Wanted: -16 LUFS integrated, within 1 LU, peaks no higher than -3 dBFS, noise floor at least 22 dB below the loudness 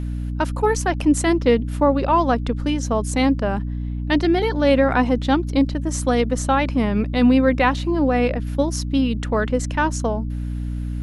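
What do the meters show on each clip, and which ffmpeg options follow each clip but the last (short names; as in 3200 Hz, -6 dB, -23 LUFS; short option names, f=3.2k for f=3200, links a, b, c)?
hum 60 Hz; harmonics up to 300 Hz; hum level -23 dBFS; loudness -20.0 LUFS; peak -4.0 dBFS; loudness target -16.0 LUFS
-> -af "bandreject=f=60:t=h:w=4,bandreject=f=120:t=h:w=4,bandreject=f=180:t=h:w=4,bandreject=f=240:t=h:w=4,bandreject=f=300:t=h:w=4"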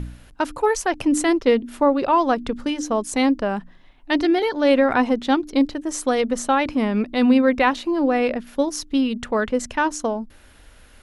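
hum none; loudness -21.0 LUFS; peak -4.5 dBFS; loudness target -16.0 LUFS
-> -af "volume=5dB,alimiter=limit=-3dB:level=0:latency=1"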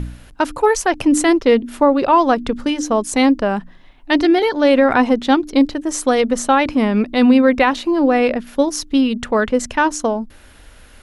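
loudness -16.0 LUFS; peak -3.0 dBFS; noise floor -44 dBFS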